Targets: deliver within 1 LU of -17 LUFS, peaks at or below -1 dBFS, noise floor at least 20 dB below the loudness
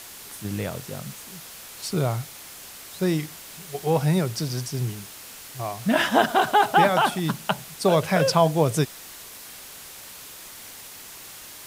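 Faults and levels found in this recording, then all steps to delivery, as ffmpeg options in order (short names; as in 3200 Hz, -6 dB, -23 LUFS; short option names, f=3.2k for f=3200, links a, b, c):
noise floor -42 dBFS; noise floor target -44 dBFS; loudness -23.5 LUFS; peak -5.0 dBFS; loudness target -17.0 LUFS
-> -af "afftdn=nr=6:nf=-42"
-af "volume=6.5dB,alimiter=limit=-1dB:level=0:latency=1"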